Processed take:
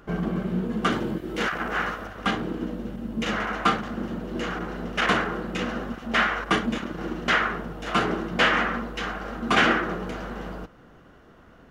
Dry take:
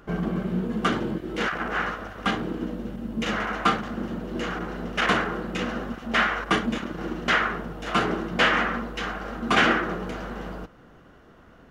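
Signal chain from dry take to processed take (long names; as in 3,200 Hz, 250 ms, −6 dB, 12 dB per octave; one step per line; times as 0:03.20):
0:00.90–0:02.07: high-shelf EQ 9,200 Hz +8 dB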